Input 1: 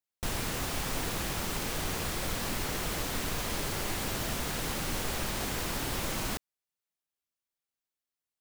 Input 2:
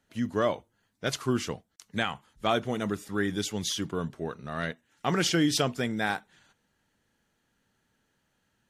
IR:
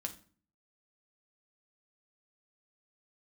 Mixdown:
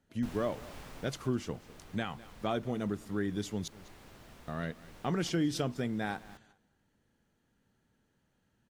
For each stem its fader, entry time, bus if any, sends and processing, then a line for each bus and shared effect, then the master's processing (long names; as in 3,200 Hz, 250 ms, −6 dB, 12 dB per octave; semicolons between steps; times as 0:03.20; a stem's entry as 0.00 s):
−4.5 dB, 0.00 s, no send, no echo send, high-shelf EQ 4,300 Hz −9.5 dB; automatic ducking −15 dB, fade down 1.50 s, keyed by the second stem
−2.0 dB, 0.00 s, muted 0:03.68–0:04.48, no send, echo send −22.5 dB, tilt shelving filter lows +4.5 dB, about 680 Hz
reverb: not used
echo: repeating echo 203 ms, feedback 18%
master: downward compressor 1.5 to 1, threshold −38 dBFS, peak gain reduction 7 dB